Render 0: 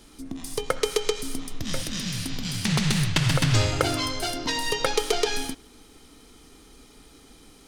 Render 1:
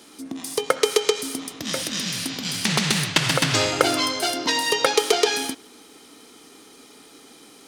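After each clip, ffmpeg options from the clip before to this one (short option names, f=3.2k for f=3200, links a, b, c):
-af "highpass=250,volume=5.5dB"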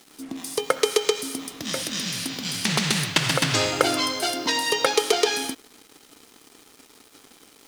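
-af "acrusher=bits=6:mix=0:aa=0.5,volume=-1.5dB"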